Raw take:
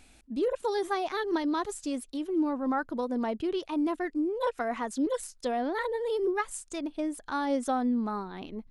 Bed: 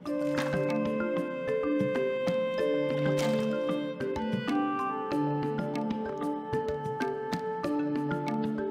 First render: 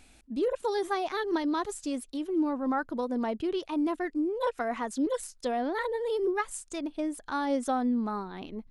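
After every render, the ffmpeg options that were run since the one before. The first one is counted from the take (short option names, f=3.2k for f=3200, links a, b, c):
-af anull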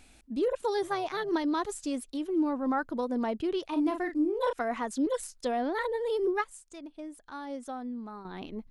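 -filter_complex "[0:a]asettb=1/sr,asplit=3[a][b][c];[a]atrim=end=0.824[d];[b]atrim=start=0.82:end=1.29,asetpts=PTS-STARTPTS,afade=t=in:d=0.004:c=qsin,afade=t=out:st=0.466:d=0.004:c=qsin,tremolo=f=250:d=0.333[e];[c]atrim=start=1.286[f];[d][e]acrossfade=d=0.004:c1=hsin:c2=qsin[g];[g][f]acrossfade=d=0.004:c1=qsin:c2=hsin,asettb=1/sr,asplit=3[h][i][j];[h]atrim=end=3.694[k];[i]atrim=start=3.69:end=4.53,asetpts=PTS-STARTPTS,afade=t=in:d=0.004:c=qsin,afade=t=out:st=0.836:d=0.004:c=qsin,asplit=2[l][m];[m]adelay=40,volume=-7dB[n];[l][n]amix=inputs=2:normalize=0,atrim=end_sample=37044[o];[j]atrim=start=4.526[p];[k][o]acrossfade=d=0.004:c1=hsin:c2=qsin[q];[q][p]acrossfade=d=0.004:c1=qsin:c2=hsin,asplit=3[r][s][t];[r]atrim=end=6.442[u];[s]atrim=start=6.438:end=8.252,asetpts=PTS-STARTPTS,volume=-10dB[v];[t]atrim=start=8.248[w];[u][v]acrossfade=d=0.004:c1=hsin:c2=hsin[x];[x][w]acrossfade=d=0.004:c1=hsin:c2=hsin"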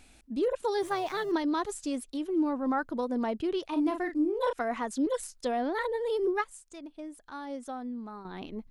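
-filter_complex "[0:a]asettb=1/sr,asplit=3[a][b][c];[a]atrim=end=0.804[d];[b]atrim=start=0.8:end=1.32,asetpts=PTS-STARTPTS,afade=t=in:d=0.004:c=qsin,afade=t=out:st=0.516:d=0.004:c=qsin,aeval=exprs='val(0)+0.5*0.00501*sgn(val(0))':c=same[e];[c]atrim=start=1.316[f];[d][e]acrossfade=d=0.004:c1=hsin:c2=qsin[g];[g][f]acrossfade=d=0.004:c1=qsin:c2=hsin"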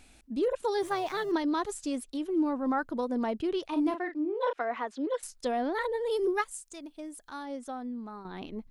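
-filter_complex "[0:a]asettb=1/sr,asplit=3[a][b][c];[a]atrim=end=3.944[d];[b]atrim=start=3.94:end=5.23,asetpts=PTS-STARTPTS,afade=t=in:d=0.004:c=qsin,afade=t=out:st=1.286:d=0.004:c=qsin,acrossover=split=280 4400:gain=0.0708 1 0.0708[e][f][g];[e][f][g]amix=inputs=3:normalize=0[h];[c]atrim=start=5.226[i];[d][h]acrossfade=d=0.004:c1=hsin:c2=qsin[j];[j][i]acrossfade=d=0.004:c1=qsin:c2=hsin,asettb=1/sr,asplit=3[k][l][m];[k]atrim=end=6.114[n];[l]atrim=start=6.11:end=7.43,asetpts=PTS-STARTPTS,afade=t=in:d=0.004:c=qsin,afade=t=out:st=1.316:d=0.004:c=qsin,highshelf=f=4.6k:g=9.5[o];[m]atrim=start=7.426[p];[n][o]acrossfade=d=0.004:c1=hsin:c2=qsin[q];[q][p]acrossfade=d=0.004:c1=qsin:c2=hsin"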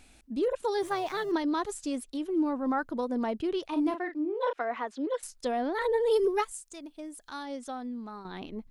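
-filter_complex "[0:a]asettb=1/sr,asplit=3[a][b][c];[a]atrim=end=5.814[d];[b]atrim=start=5.81:end=6.52,asetpts=PTS-STARTPTS,afade=t=in:d=0.004:c=qsin,afade=t=out:st=0.706:d=0.004:c=qsin,aecho=1:1:4.5:0.92,atrim=end_sample=31311[e];[c]atrim=start=6.516[f];[d][e]acrossfade=d=0.004:c1=hsin:c2=qsin[g];[g][f]acrossfade=d=0.004:c1=qsin:c2=hsin,asettb=1/sr,asplit=3[h][i][j];[h]atrim=end=7.214[k];[i]atrim=start=7.21:end=8.38,asetpts=PTS-STARTPTS,afade=t=in:d=0.004:c=qsin,afade=t=out:st=1.166:d=0.004:c=qsin,equalizer=f=4.3k:t=o:w=2.1:g=6[l];[j]atrim=start=8.376[m];[k][l]acrossfade=d=0.004:c1=hsin:c2=qsin[n];[n][m]acrossfade=d=0.004:c1=qsin:c2=hsin"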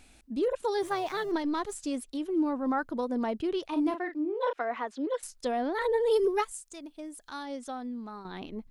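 -filter_complex "[0:a]asplit=3[a][b][c];[a]afade=t=out:st=1.26:d=0.02[d];[b]aeval=exprs='if(lt(val(0),0),0.708*val(0),val(0))':c=same,afade=t=in:st=1.26:d=0.02,afade=t=out:st=1.73:d=0.02[e];[c]afade=t=in:st=1.73:d=0.02[f];[d][e][f]amix=inputs=3:normalize=0"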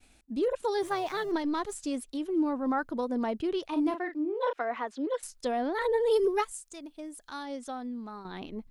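-af "agate=range=-33dB:threshold=-53dB:ratio=3:detection=peak"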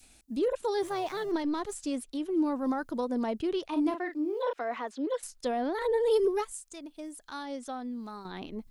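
-filter_complex "[0:a]acrossover=split=700|4200[a][b][c];[b]alimiter=level_in=7dB:limit=-24dB:level=0:latency=1:release=24,volume=-7dB[d];[c]acompressor=mode=upward:threshold=-53dB:ratio=2.5[e];[a][d][e]amix=inputs=3:normalize=0"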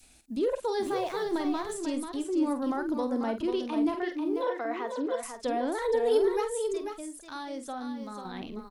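-filter_complex "[0:a]asplit=2[a][b];[b]adelay=48,volume=-10dB[c];[a][c]amix=inputs=2:normalize=0,aecho=1:1:491:0.447"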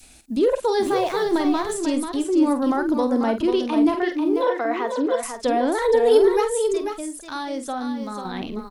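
-af "volume=9dB"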